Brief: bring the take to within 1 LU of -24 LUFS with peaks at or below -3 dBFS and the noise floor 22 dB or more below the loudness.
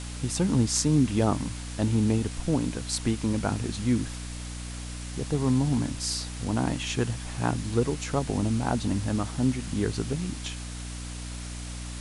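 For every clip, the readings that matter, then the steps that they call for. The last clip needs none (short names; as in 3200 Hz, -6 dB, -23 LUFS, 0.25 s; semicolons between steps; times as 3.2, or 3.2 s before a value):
hum 60 Hz; harmonics up to 300 Hz; hum level -35 dBFS; noise floor -37 dBFS; noise floor target -51 dBFS; loudness -28.5 LUFS; peak -7.5 dBFS; loudness target -24.0 LUFS
-> notches 60/120/180/240/300 Hz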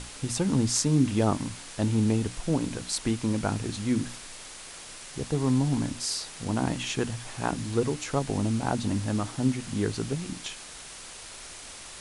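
hum none; noise floor -44 dBFS; noise floor target -51 dBFS
-> denoiser 7 dB, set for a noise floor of -44 dBFS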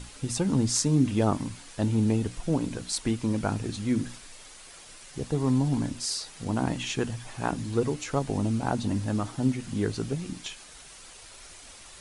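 noise floor -48 dBFS; noise floor target -51 dBFS
-> denoiser 6 dB, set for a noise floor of -48 dBFS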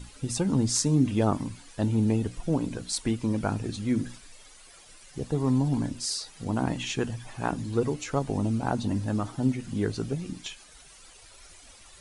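noise floor -52 dBFS; loudness -28.5 LUFS; peak -8.0 dBFS; loudness target -24.0 LUFS
-> gain +4.5 dB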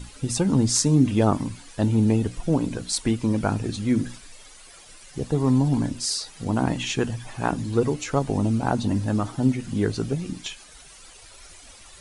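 loudness -24.0 LUFS; peak -3.5 dBFS; noise floor -48 dBFS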